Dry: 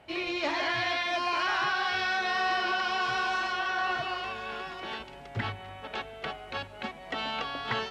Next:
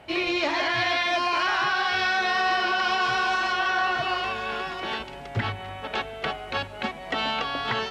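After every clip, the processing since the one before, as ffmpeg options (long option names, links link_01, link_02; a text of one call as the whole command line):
ffmpeg -i in.wav -af "alimiter=limit=-22.5dB:level=0:latency=1:release=207,volume=7dB" out.wav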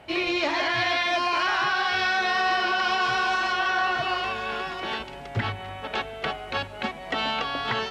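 ffmpeg -i in.wav -af anull out.wav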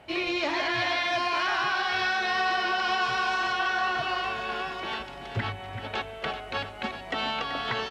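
ffmpeg -i in.wav -af "aecho=1:1:383:0.316,volume=-3dB" out.wav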